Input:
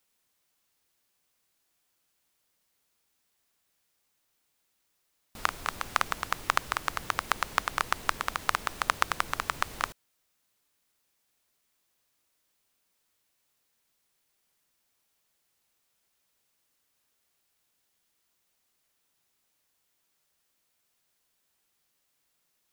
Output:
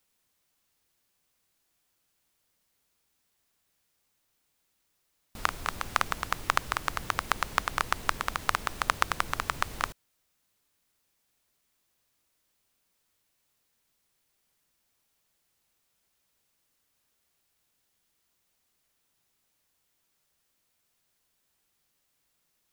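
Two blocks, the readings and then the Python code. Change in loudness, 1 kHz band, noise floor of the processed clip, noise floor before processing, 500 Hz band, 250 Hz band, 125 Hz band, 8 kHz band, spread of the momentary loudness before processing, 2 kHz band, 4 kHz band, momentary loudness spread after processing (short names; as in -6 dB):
0.0 dB, 0.0 dB, -76 dBFS, -76 dBFS, +0.5 dB, +2.0 dB, +4.0 dB, 0.0 dB, 4 LU, 0.0 dB, 0.0 dB, 4 LU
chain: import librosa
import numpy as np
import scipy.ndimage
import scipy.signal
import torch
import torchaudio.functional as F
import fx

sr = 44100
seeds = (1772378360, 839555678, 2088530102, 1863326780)

y = fx.low_shelf(x, sr, hz=190.0, db=5.5)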